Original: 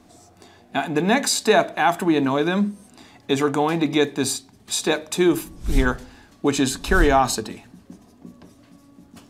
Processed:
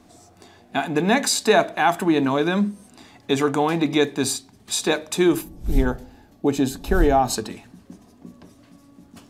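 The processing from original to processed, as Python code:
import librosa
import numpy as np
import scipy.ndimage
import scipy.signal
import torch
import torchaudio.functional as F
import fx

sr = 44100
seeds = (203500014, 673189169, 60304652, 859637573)

y = fx.spec_box(x, sr, start_s=5.42, length_s=1.89, low_hz=910.0, high_hz=11000.0, gain_db=-8)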